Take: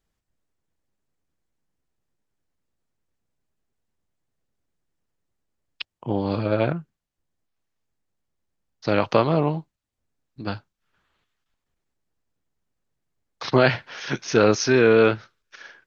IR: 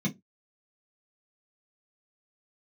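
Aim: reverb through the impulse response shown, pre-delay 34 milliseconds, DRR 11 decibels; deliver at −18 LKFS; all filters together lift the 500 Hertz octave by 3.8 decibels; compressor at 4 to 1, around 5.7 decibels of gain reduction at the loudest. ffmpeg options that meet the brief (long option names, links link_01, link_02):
-filter_complex "[0:a]equalizer=frequency=500:width_type=o:gain=4.5,acompressor=threshold=-15dB:ratio=4,asplit=2[link_01][link_02];[1:a]atrim=start_sample=2205,adelay=34[link_03];[link_02][link_03]afir=irnorm=-1:irlink=0,volume=-16dB[link_04];[link_01][link_04]amix=inputs=2:normalize=0,volume=3dB"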